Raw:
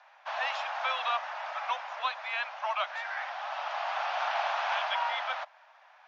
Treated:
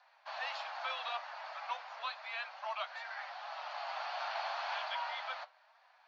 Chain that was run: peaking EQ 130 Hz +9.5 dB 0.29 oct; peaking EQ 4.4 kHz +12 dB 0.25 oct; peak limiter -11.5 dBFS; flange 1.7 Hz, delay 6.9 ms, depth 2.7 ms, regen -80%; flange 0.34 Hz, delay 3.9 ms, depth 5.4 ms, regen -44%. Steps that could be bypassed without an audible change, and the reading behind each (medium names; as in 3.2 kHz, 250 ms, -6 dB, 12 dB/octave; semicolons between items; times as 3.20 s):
peaking EQ 130 Hz: input has nothing below 450 Hz; peak limiter -11.5 dBFS: peak at its input -18.0 dBFS